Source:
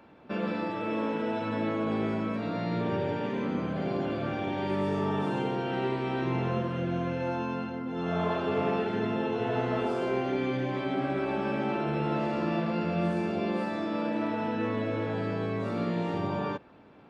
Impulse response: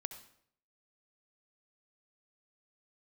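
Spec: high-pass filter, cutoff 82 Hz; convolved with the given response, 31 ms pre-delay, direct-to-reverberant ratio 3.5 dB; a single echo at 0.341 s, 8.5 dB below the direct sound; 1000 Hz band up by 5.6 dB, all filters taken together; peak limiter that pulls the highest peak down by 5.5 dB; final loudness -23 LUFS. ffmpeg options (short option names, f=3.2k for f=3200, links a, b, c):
-filter_complex "[0:a]highpass=82,equalizer=f=1k:t=o:g=7,alimiter=limit=-20.5dB:level=0:latency=1,aecho=1:1:341:0.376,asplit=2[a][b];[1:a]atrim=start_sample=2205,adelay=31[c];[b][c]afir=irnorm=-1:irlink=0,volume=-1.5dB[d];[a][d]amix=inputs=2:normalize=0,volume=4.5dB"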